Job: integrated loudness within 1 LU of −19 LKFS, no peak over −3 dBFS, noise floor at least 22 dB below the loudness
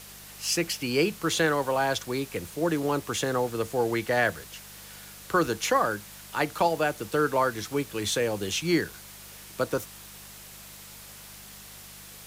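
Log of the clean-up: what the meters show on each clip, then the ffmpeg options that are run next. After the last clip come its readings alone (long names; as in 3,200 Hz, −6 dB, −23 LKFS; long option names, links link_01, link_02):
mains hum 50 Hz; hum harmonics up to 200 Hz; level of the hum −53 dBFS; background noise floor −46 dBFS; target noise floor −50 dBFS; integrated loudness −27.5 LKFS; sample peak −12.0 dBFS; target loudness −19.0 LKFS
→ -af "bandreject=frequency=50:width_type=h:width=4,bandreject=frequency=100:width_type=h:width=4,bandreject=frequency=150:width_type=h:width=4,bandreject=frequency=200:width_type=h:width=4"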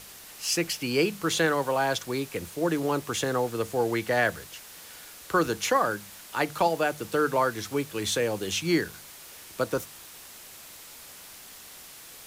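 mains hum none found; background noise floor −47 dBFS; target noise floor −50 dBFS
→ -af "afftdn=noise_reduction=6:noise_floor=-47"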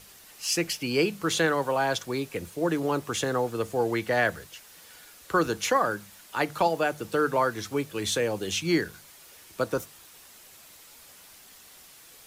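background noise floor −52 dBFS; integrated loudness −27.5 LKFS; sample peak −12.0 dBFS; target loudness −19.0 LKFS
→ -af "volume=8.5dB"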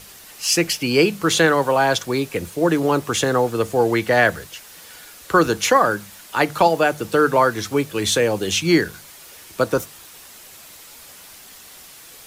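integrated loudness −19.0 LKFS; sample peak −3.5 dBFS; background noise floor −43 dBFS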